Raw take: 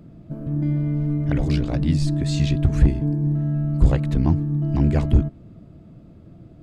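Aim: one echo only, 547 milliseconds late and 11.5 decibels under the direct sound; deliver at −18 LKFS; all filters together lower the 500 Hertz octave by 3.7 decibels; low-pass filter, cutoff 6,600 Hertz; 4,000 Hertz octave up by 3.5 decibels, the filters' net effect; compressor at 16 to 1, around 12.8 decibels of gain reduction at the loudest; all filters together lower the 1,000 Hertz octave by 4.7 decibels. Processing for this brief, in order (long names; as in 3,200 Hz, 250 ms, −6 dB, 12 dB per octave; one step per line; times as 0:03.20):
low-pass filter 6,600 Hz
parametric band 500 Hz −4 dB
parametric band 1,000 Hz −5 dB
parametric band 4,000 Hz +5 dB
downward compressor 16 to 1, threshold −22 dBFS
single-tap delay 547 ms −11.5 dB
level +9 dB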